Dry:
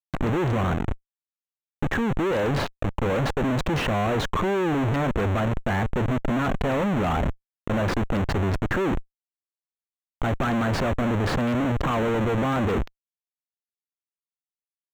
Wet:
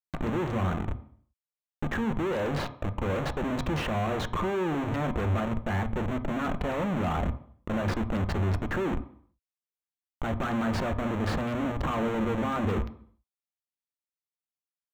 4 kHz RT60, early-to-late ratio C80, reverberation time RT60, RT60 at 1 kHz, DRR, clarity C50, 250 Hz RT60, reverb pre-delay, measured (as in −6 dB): 0.60 s, 17.0 dB, 0.55 s, 0.55 s, 9.0 dB, 14.5 dB, 0.60 s, 3 ms